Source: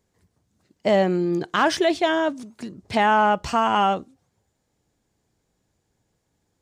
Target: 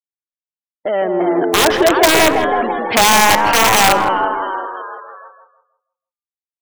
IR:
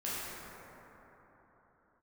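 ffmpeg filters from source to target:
-filter_complex "[0:a]acompressor=threshold=-24dB:ratio=2.5,asplit=2[a][b];[b]asplit=5[c][d][e][f][g];[c]adelay=336,afreqshift=84,volume=-9dB[h];[d]adelay=672,afreqshift=168,volume=-15.7dB[i];[e]adelay=1008,afreqshift=252,volume=-22.5dB[j];[f]adelay=1344,afreqshift=336,volume=-29.2dB[k];[g]adelay=1680,afreqshift=420,volume=-36dB[l];[h][i][j][k][l]amix=inputs=5:normalize=0[m];[a][m]amix=inputs=2:normalize=0,asoftclip=type=tanh:threshold=-22dB,equalizer=f=4.4k:w=1.3:g=-7.5,dynaudnorm=f=240:g=9:m=16dB,highpass=f=70:w=0.5412,highpass=f=70:w=1.3066,acrossover=split=300 4500:gain=0.0794 1 0.0891[n][o][p];[n][o][p]amix=inputs=3:normalize=0,aeval=exprs='(mod(2.11*val(0)+1,2)-1)/2.11':c=same,afftfilt=real='re*gte(hypot(re,im),0.0316)':imag='im*gte(hypot(re,im),0.0316)':win_size=1024:overlap=0.75,agate=range=-15dB:threshold=-40dB:ratio=16:detection=peak,asplit=2[q][r];[r]adelay=162,lowpass=f=940:p=1,volume=-4dB,asplit=2[s][t];[t]adelay=162,lowpass=f=940:p=1,volume=0.38,asplit=2[u][v];[v]adelay=162,lowpass=f=940:p=1,volume=0.38,asplit=2[w][x];[x]adelay=162,lowpass=f=940:p=1,volume=0.38,asplit=2[y][z];[z]adelay=162,lowpass=f=940:p=1,volume=0.38[aa];[s][u][w][y][aa]amix=inputs=5:normalize=0[ab];[q][ab]amix=inputs=2:normalize=0,volume=2dB"

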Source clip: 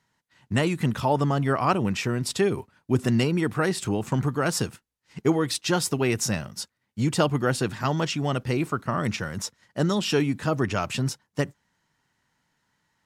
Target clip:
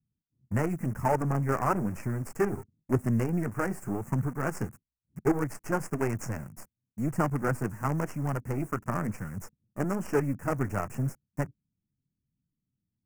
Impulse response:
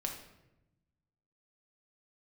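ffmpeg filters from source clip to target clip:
-filter_complex "[0:a]flanger=delay=0.9:depth=8.9:regen=-37:speed=0.97:shape=sinusoidal,acrossover=split=280[a][b];[b]acrusher=bits=5:dc=4:mix=0:aa=0.000001[c];[a][c]amix=inputs=2:normalize=0,acrossover=split=6200[d][e];[e]acompressor=threshold=-43dB:ratio=4:attack=1:release=60[f];[d][f]amix=inputs=2:normalize=0,asuperstop=centerf=3700:order=4:qfactor=0.67"

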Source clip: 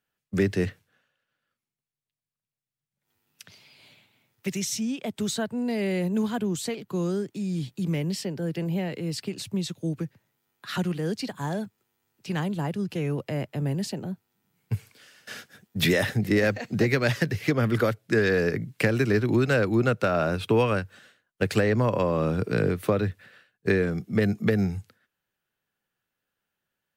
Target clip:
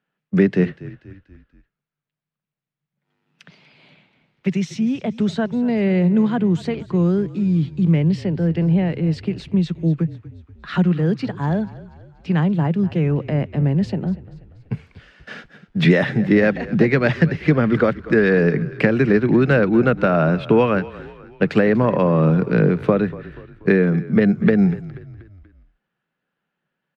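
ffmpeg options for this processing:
-filter_complex "[0:a]lowpass=2.6k,lowshelf=f=120:t=q:w=3:g=-8.5,asplit=5[a][b][c][d][e];[b]adelay=241,afreqshift=-34,volume=-18dB[f];[c]adelay=482,afreqshift=-68,volume=-24dB[g];[d]adelay=723,afreqshift=-102,volume=-30dB[h];[e]adelay=964,afreqshift=-136,volume=-36.1dB[i];[a][f][g][h][i]amix=inputs=5:normalize=0,volume=6dB"

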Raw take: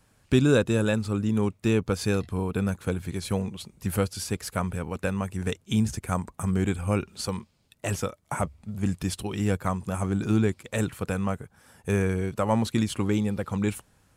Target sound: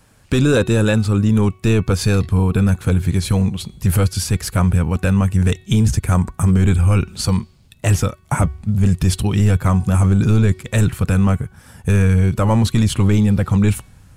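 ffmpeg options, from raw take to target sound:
-af "asubboost=boost=3:cutoff=210,apsyclip=18.5dB,bandreject=f=372.8:t=h:w=4,bandreject=f=745.6:t=h:w=4,bandreject=f=1.1184k:t=h:w=4,bandreject=f=1.4912k:t=h:w=4,bandreject=f=1.864k:t=h:w=4,bandreject=f=2.2368k:t=h:w=4,bandreject=f=2.6096k:t=h:w=4,bandreject=f=2.9824k:t=h:w=4,bandreject=f=3.3552k:t=h:w=4,bandreject=f=3.728k:t=h:w=4,bandreject=f=4.1008k:t=h:w=4,bandreject=f=4.4736k:t=h:w=4,volume=-8.5dB"

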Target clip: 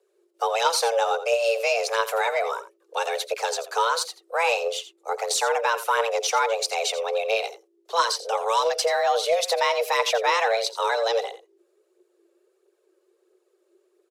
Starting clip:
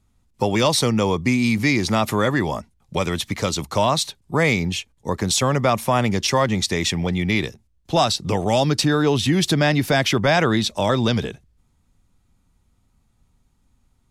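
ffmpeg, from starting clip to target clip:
-af "afreqshift=340,aphaser=in_gain=1:out_gain=1:delay=3.8:decay=0.43:speed=1.5:type=triangular,aecho=1:1:85:0.2,volume=-5dB"

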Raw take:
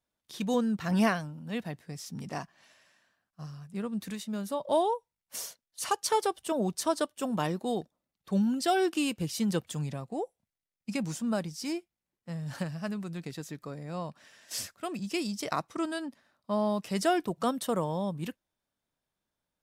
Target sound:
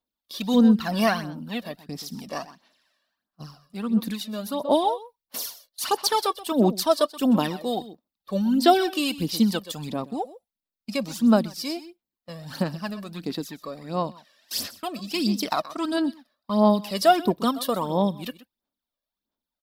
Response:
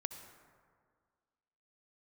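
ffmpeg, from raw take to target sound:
-filter_complex "[0:a]equalizer=f=125:t=o:w=1:g=-12,equalizer=f=250:t=o:w=1:g=8,equalizer=f=1k:t=o:w=1:g=4,equalizer=f=2k:t=o:w=1:g=-3,equalizer=f=4k:t=o:w=1:g=11,equalizer=f=8k:t=o:w=1:g=-3,agate=range=-11dB:threshold=-48dB:ratio=16:detection=peak,aexciter=amount=2.1:drive=3.1:freq=5.1k,asplit=2[a][b];[b]aecho=0:1:127:0.158[c];[a][c]amix=inputs=2:normalize=0,aphaser=in_gain=1:out_gain=1:delay=1.8:decay=0.6:speed=1.5:type=sinusoidal,equalizer=f=6.2k:t=o:w=0.66:g=-8.5,volume=1.5dB"

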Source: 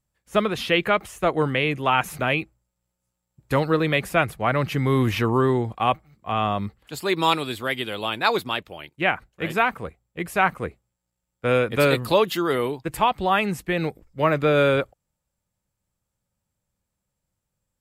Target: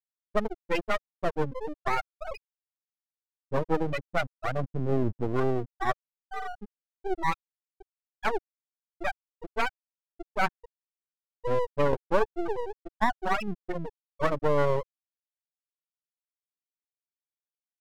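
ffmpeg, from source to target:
-af "aeval=exprs='0.501*(cos(1*acos(clip(val(0)/0.501,-1,1)))-cos(1*PI/2))+0.00355*(cos(2*acos(clip(val(0)/0.501,-1,1)))-cos(2*PI/2))+0.00631*(cos(3*acos(clip(val(0)/0.501,-1,1)))-cos(3*PI/2))+0.0126*(cos(4*acos(clip(val(0)/0.501,-1,1)))-cos(4*PI/2))':c=same,afftfilt=real='re*gte(hypot(re,im),0.447)':imag='im*gte(hypot(re,im),0.447)':win_size=1024:overlap=0.75,aeval=exprs='max(val(0),0)':c=same"

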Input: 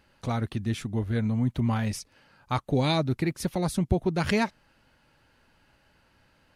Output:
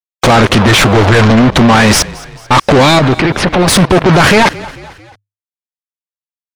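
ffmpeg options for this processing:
-filter_complex "[0:a]asettb=1/sr,asplit=3[a][b][c];[a]atrim=end=0.674[d];[b]atrim=start=0.67:end=1.31,asetpts=PTS-STARTPTS,afade=t=in:d=0.004:c=qsin,afade=t=out:st=0.636:d=0.004:c=qsin,equalizer=f=230:w=5.2:g=-14.5[e];[c]atrim=start=1.306[f];[d][e]acrossfade=d=0.004:c1=hsin:c2=qsin[g];[g][f]acrossfade=d=0.004:c1=qsin:c2=hsin,acrusher=bits=6:mix=0:aa=0.000001,acompressor=threshold=-34dB:ratio=6,asplit=2[h][i];[i]highpass=f=720:p=1,volume=37dB,asoftclip=type=tanh:threshold=-22.5dB[j];[h][j]amix=inputs=2:normalize=0,lowpass=f=3k:p=1,volume=-6dB,asettb=1/sr,asplit=3[k][l][m];[k]atrim=end=2.994[n];[l]atrim=start=2.99:end=3.68,asetpts=PTS-STARTPTS,afade=t=in:d=0.004:c=qsin,afade=t=out:st=0.686:d=0.004:c=qsin,acrossover=split=400|3400[o][p][q];[o]acompressor=threshold=-32dB:ratio=4[r];[p]acompressor=threshold=-35dB:ratio=4[s];[q]acompressor=threshold=-50dB:ratio=4[t];[r][s][t]amix=inputs=3:normalize=0[u];[m]atrim=start=3.676[v];[n][u]acrossfade=d=0.004:c1=hsin:c2=qsin[w];[w][v]acrossfade=d=0.004:c1=qsin:c2=hsin,afftdn=nr=22:nf=-53,asplit=4[x][y][z][aa];[y]adelay=222,afreqshift=-34,volume=-22.5dB[ab];[z]adelay=444,afreqshift=-68,volume=-28.7dB[ac];[aa]adelay=666,afreqshift=-102,volume=-34.9dB[ad];[x][ab][ac][ad]amix=inputs=4:normalize=0,alimiter=level_in=28dB:limit=-1dB:release=50:level=0:latency=1,volume=-1dB"

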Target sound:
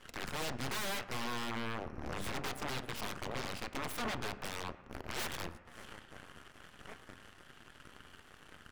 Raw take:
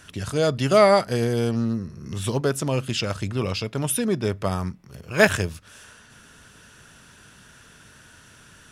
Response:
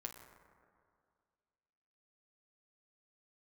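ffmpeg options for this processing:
-filter_complex "[0:a]aeval=exprs='if(lt(val(0),0),0.447*val(0),val(0))':c=same,highshelf=f=2.2k:t=q:w=1.5:g=-6.5,acompressor=threshold=-43dB:ratio=2,asplit=2[a][b];[b]adelay=1691,volume=-18dB,highshelf=f=4k:g=-38[c];[a][c]amix=inputs=2:normalize=0,aeval=exprs='0.133*(cos(1*acos(clip(val(0)/0.133,-1,1)))-cos(1*PI/2))+0.0473*(cos(3*acos(clip(val(0)/0.133,-1,1)))-cos(3*PI/2))+0.0596*(cos(4*acos(clip(val(0)/0.133,-1,1)))-cos(4*PI/2))+0.00668*(cos(5*acos(clip(val(0)/0.133,-1,1)))-cos(5*PI/2))+0.0376*(cos(8*acos(clip(val(0)/0.133,-1,1)))-cos(8*PI/2))':c=same,aeval=exprs='0.0141*(abs(mod(val(0)/0.0141+3,4)-2)-1)':c=same,asplit=2[d][e];[1:a]atrim=start_sample=2205,asetrate=57330,aresample=44100,lowpass=5.1k[f];[e][f]afir=irnorm=-1:irlink=0,volume=1dB[g];[d][g]amix=inputs=2:normalize=0,volume=3dB"

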